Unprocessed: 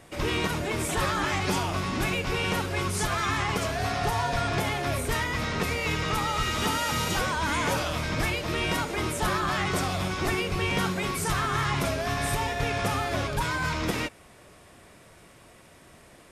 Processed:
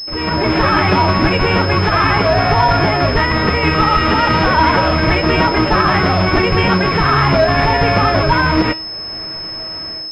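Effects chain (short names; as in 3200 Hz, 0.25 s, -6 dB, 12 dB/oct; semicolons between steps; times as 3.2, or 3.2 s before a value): AGC gain up to 16.5 dB; resonator 320 Hz, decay 0.66 s, mix 80%; time stretch by phase-locked vocoder 0.62×; maximiser +17.5 dB; pulse-width modulation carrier 5200 Hz; gain -1 dB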